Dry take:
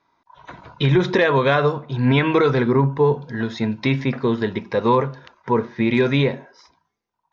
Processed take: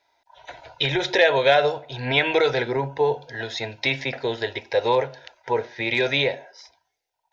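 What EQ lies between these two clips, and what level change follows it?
low shelf with overshoot 520 Hz −10.5 dB, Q 1.5
phaser with its sweep stopped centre 470 Hz, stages 4
+6.0 dB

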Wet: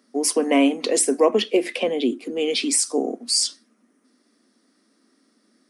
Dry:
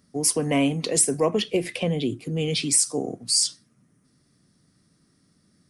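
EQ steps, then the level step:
elliptic high-pass filter 230 Hz, stop band 40 dB
high-shelf EQ 6,200 Hz −8 dB
+5.5 dB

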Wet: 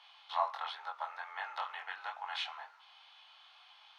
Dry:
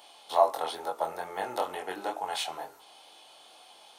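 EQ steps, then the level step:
high-pass filter 1,100 Hz 24 dB per octave
high-frequency loss of the air 250 metres
high-shelf EQ 9,900 Hz −7.5 dB
+2.0 dB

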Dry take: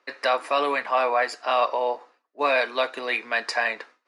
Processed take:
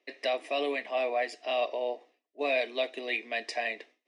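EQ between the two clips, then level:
loudspeaker in its box 270–9,000 Hz, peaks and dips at 520 Hz −8 dB, 810 Hz −5 dB, 1,400 Hz −8 dB, 2,300 Hz −4 dB, 4,500 Hz −9 dB, 7,000 Hz −6 dB
flat-topped bell 1,200 Hz −16 dB 1.1 octaves
high-shelf EQ 5,000 Hz −5 dB
0.0 dB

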